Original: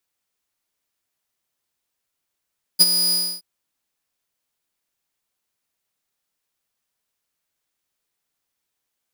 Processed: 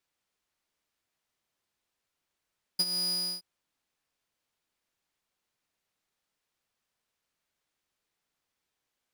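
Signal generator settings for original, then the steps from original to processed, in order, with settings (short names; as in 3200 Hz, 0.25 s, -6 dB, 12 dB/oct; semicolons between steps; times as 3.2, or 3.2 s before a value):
ADSR saw 4920 Hz, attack 23 ms, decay 32 ms, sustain -10 dB, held 0.33 s, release 0.292 s -4.5 dBFS
high shelf 7700 Hz -11.5 dB; compressor 5:1, threshold -28 dBFS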